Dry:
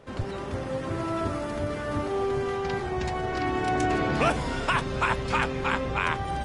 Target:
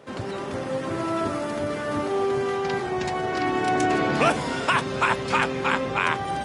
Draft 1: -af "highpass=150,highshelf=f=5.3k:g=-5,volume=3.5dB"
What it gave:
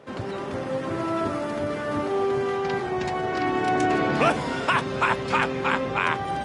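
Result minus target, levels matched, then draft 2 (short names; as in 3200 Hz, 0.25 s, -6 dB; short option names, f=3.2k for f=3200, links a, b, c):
8000 Hz band -4.5 dB
-af "highpass=150,highshelf=f=5.3k:g=2,volume=3.5dB"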